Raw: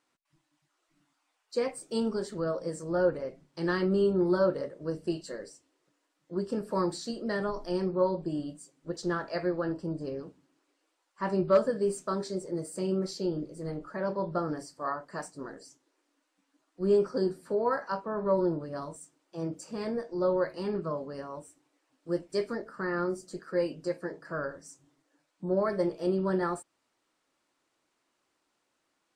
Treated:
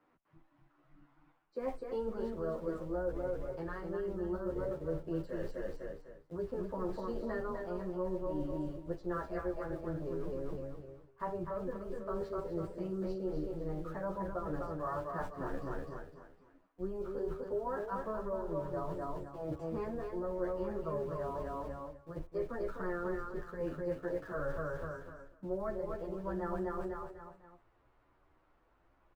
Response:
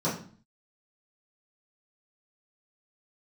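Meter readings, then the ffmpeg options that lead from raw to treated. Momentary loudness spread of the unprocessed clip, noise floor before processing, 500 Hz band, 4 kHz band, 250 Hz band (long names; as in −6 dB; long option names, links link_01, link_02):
14 LU, −78 dBFS, −7.5 dB, below −15 dB, −8.0 dB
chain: -filter_complex "[0:a]asubboost=boost=8:cutoff=75,acrossover=split=95|320[link_01][link_02][link_03];[link_01]acompressor=threshold=-49dB:ratio=4[link_04];[link_02]acompressor=threshold=-48dB:ratio=4[link_05];[link_03]acompressor=threshold=-35dB:ratio=4[link_06];[link_04][link_05][link_06]amix=inputs=3:normalize=0,lowpass=1400,asplit=2[link_07][link_08];[link_08]aeval=exprs='val(0)*gte(abs(val(0)),0.00299)':channel_layout=same,volume=-7dB[link_09];[link_07][link_09]amix=inputs=2:normalize=0,lowshelf=frequency=110:gain=6,aecho=1:1:252|504|756|1008:0.562|0.197|0.0689|0.0241,areverse,acompressor=threshold=-43dB:ratio=6,areverse,asplit=2[link_10][link_11];[link_11]adelay=10.1,afreqshift=0.81[link_12];[link_10][link_12]amix=inputs=2:normalize=1,volume=10.5dB"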